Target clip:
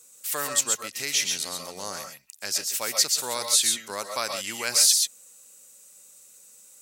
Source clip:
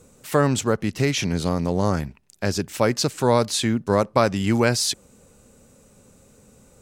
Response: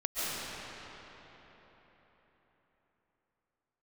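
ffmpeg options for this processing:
-filter_complex "[0:a]aderivative[link_01];[1:a]atrim=start_sample=2205,atrim=end_sample=6174[link_02];[link_01][link_02]afir=irnorm=-1:irlink=0,volume=8dB"

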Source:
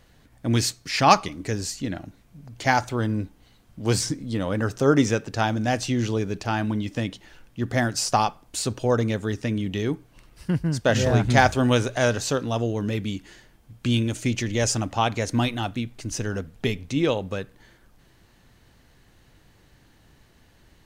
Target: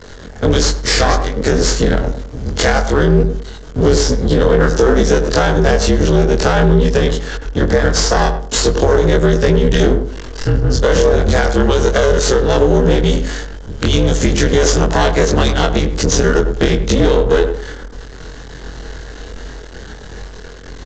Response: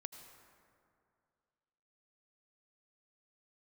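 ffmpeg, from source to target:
-filter_complex "[0:a]afftfilt=real='re':imag='-im':win_size=2048:overlap=0.75,highshelf=frequency=4500:gain=2.5,acompressor=threshold=-38dB:ratio=8,aresample=16000,aeval=exprs='max(val(0),0)':channel_layout=same,aresample=44100,equalizer=frequency=500:width_type=o:width=0.33:gain=11,equalizer=frequency=1600:width_type=o:width=0.33:gain=4,equalizer=frequency=2500:width_type=o:width=0.33:gain=-7,afreqshift=-48,asplit=2[link_01][link_02];[link_02]adelay=102,lowpass=frequency=860:poles=1,volume=-7.5dB,asplit=2[link_03][link_04];[link_04]adelay=102,lowpass=frequency=860:poles=1,volume=0.28,asplit=2[link_05][link_06];[link_06]adelay=102,lowpass=frequency=860:poles=1,volume=0.28[link_07];[link_03][link_05][link_07]amix=inputs=3:normalize=0[link_08];[link_01][link_08]amix=inputs=2:normalize=0,alimiter=level_in=31dB:limit=-1dB:release=50:level=0:latency=1,volume=-1dB"

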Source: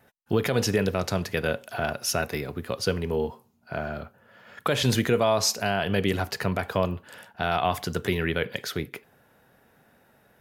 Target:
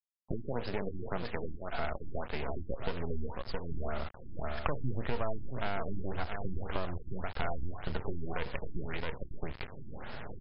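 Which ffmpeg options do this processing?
ffmpeg -i in.wav -filter_complex "[0:a]adynamicequalizer=threshold=0.0158:dfrequency=650:dqfactor=1.1:tfrequency=650:tqfactor=1.1:attack=5:release=100:ratio=0.375:range=3:mode=boostabove:tftype=bell,asplit=2[link_01][link_02];[link_02]aecho=0:1:670:0.251[link_03];[link_01][link_03]amix=inputs=2:normalize=0,dynaudnorm=framelen=140:gausssize=3:maxgain=16dB,asplit=2[link_04][link_05];[link_05]alimiter=limit=-16.5dB:level=0:latency=1,volume=0dB[link_06];[link_04][link_06]amix=inputs=2:normalize=0,acompressor=threshold=-34dB:ratio=3,acrusher=bits=4:dc=4:mix=0:aa=0.000001,asubboost=boost=2.5:cutoff=130,afftfilt=real='re*lt(b*sr/1024,360*pow(5400/360,0.5+0.5*sin(2*PI*1.8*pts/sr)))':imag='im*lt(b*sr/1024,360*pow(5400/360,0.5+0.5*sin(2*PI*1.8*pts/sr)))':win_size=1024:overlap=0.75,volume=-1.5dB" out.wav

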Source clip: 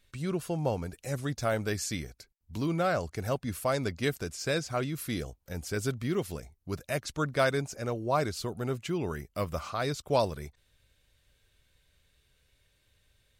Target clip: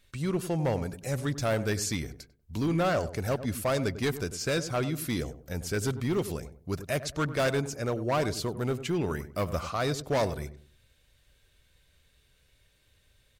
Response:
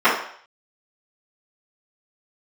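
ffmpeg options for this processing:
-filter_complex "[0:a]volume=25.5dB,asoftclip=hard,volume=-25.5dB,asplit=2[link_01][link_02];[link_02]adelay=97,lowpass=frequency=840:poles=1,volume=-11dB,asplit=2[link_03][link_04];[link_04]adelay=97,lowpass=frequency=840:poles=1,volume=0.33,asplit=2[link_05][link_06];[link_06]adelay=97,lowpass=frequency=840:poles=1,volume=0.33,asplit=2[link_07][link_08];[link_08]adelay=97,lowpass=frequency=840:poles=1,volume=0.33[link_09];[link_01][link_03][link_05][link_07][link_09]amix=inputs=5:normalize=0,volume=3dB"

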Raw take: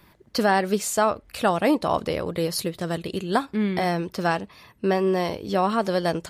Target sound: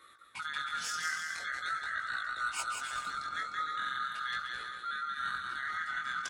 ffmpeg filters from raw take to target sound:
ffmpeg -i in.wav -filter_complex "[0:a]afftfilt=real='real(if(lt(b,272),68*(eq(floor(b/68),0)*2+eq(floor(b/68),1)*0+eq(floor(b/68),2)*3+eq(floor(b/68),3)*1)+mod(b,68),b),0)':imag='imag(if(lt(b,272),68*(eq(floor(b/68),0)*2+eq(floor(b/68),1)*0+eq(floor(b/68),2)*3+eq(floor(b/68),3)*1)+mod(b,68),b),0)':win_size=2048:overlap=0.75,acrossover=split=130|7100[link_01][link_02][link_03];[link_03]aeval=exprs='clip(val(0),-1,0.0251)':channel_layout=same[link_04];[link_01][link_02][link_04]amix=inputs=3:normalize=0,acrossover=split=230|1800[link_05][link_06][link_07];[link_05]acompressor=threshold=-50dB:ratio=4[link_08];[link_06]acompressor=threshold=-27dB:ratio=4[link_09];[link_07]acompressor=threshold=-21dB:ratio=4[link_10];[link_08][link_09][link_10]amix=inputs=3:normalize=0,highpass=frequency=50:width=0.5412,highpass=frequency=50:width=1.3066,areverse,acompressor=threshold=-32dB:ratio=8,areverse,aecho=1:1:180|306|394.2|455.9|499.2:0.631|0.398|0.251|0.158|0.1,asetrate=33038,aresample=44100,atempo=1.33484,flanger=delay=17:depth=7.7:speed=0.42,adynamicequalizer=threshold=0.00282:dfrequency=3300:dqfactor=0.7:tfrequency=3300:tqfactor=0.7:attack=5:release=100:ratio=0.375:range=2:mode=boostabove:tftype=highshelf" out.wav

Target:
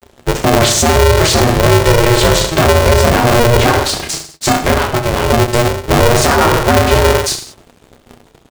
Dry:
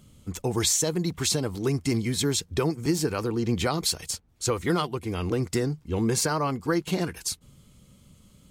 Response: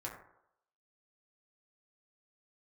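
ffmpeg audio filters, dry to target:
-filter_complex "[0:a]lowpass=frequency=2200:poles=1,aecho=1:1:5.9:0.38,asettb=1/sr,asplit=3[link_01][link_02][link_03];[link_01]atrim=end=3.694[link_04];[link_02]atrim=start=3.69:end=5.78,asetpts=PTS-STARTPTS,afade=type=in:duration=0.004:curve=qsin,afade=type=out:start_time=2.086:duration=0.004:curve=qsin,acompressor=threshold=-32dB:ratio=4[link_05];[link_03]atrim=start=5.776[link_06];[link_04][link_05]acrossfade=duration=0.004:curve1=hsin:curve2=qsin[link_07];[link_07][link_06]acrossfade=duration=0.004:curve1=qsin:curve2=hsin,aeval=exprs='sgn(val(0))*max(abs(val(0))-0.00316,0)':channel_layout=same,flanger=delay=5.8:depth=7.4:regen=49:speed=0.57:shape=triangular,aecho=1:1:30|64.5|104.2|149.8|202.3:0.631|0.398|0.251|0.158|0.1,alimiter=level_in=26dB:limit=-1dB:release=50:level=0:latency=1,aeval=exprs='val(0)*sgn(sin(2*PI*240*n/s))':channel_layout=same,volume=-1dB"

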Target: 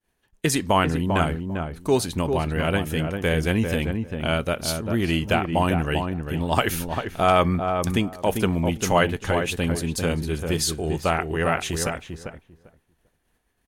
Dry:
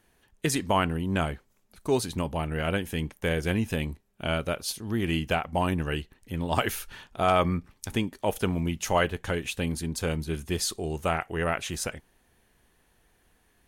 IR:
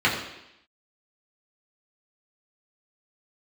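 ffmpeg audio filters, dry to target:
-filter_complex "[0:a]agate=range=-33dB:threshold=-56dB:ratio=3:detection=peak,asplit=2[link_01][link_02];[link_02]adelay=396,lowpass=frequency=1300:poles=1,volume=-5dB,asplit=2[link_03][link_04];[link_04]adelay=396,lowpass=frequency=1300:poles=1,volume=0.17,asplit=2[link_05][link_06];[link_06]adelay=396,lowpass=frequency=1300:poles=1,volume=0.17[link_07];[link_03][link_05][link_07]amix=inputs=3:normalize=0[link_08];[link_01][link_08]amix=inputs=2:normalize=0,volume=4.5dB"

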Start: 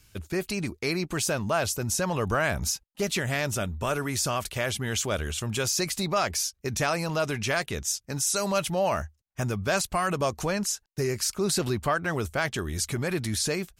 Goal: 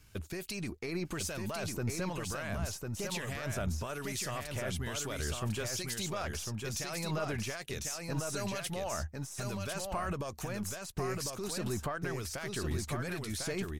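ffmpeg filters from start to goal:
ffmpeg -i in.wav -filter_complex "[0:a]aeval=exprs='if(lt(val(0),0),0.708*val(0),val(0))':channel_layout=same,asettb=1/sr,asplit=3[link_01][link_02][link_03];[link_01]atrim=end=10.404[link_04];[link_02]atrim=start=10.4:end=10.86,asetpts=PTS-STARTPTS,afade=type=in:duration=0.004:curve=qsin,afade=type=out:start_time=0.456:duration=0.004:curve=qsin,equalizer=frequency=5000:width_type=o:width=1.6:gain=-9[link_05];[link_03]atrim=start=10.856[link_06];[link_04][link_05]acrossfade=duration=0.004:curve1=hsin:curve2=qsin[link_07];[link_07][link_06]acrossfade=duration=0.004:curve1=qsin:curve2=hsin,alimiter=level_in=4dB:limit=-24dB:level=0:latency=1:release=85,volume=-4dB,acrossover=split=2100[link_08][link_09];[link_08]aeval=exprs='val(0)*(1-0.5/2+0.5/2*cos(2*PI*1.1*n/s))':channel_layout=same[link_10];[link_09]aeval=exprs='val(0)*(1-0.5/2-0.5/2*cos(2*PI*1.1*n/s))':channel_layout=same[link_11];[link_10][link_11]amix=inputs=2:normalize=0,aecho=1:1:1050:0.631,volume=1.5dB" out.wav

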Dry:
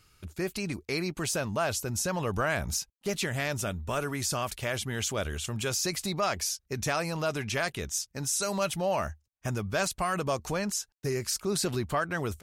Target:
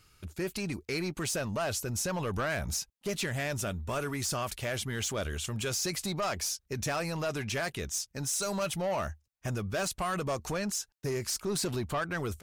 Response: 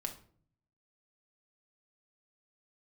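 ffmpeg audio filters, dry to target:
-af "asoftclip=type=tanh:threshold=-25.5dB"

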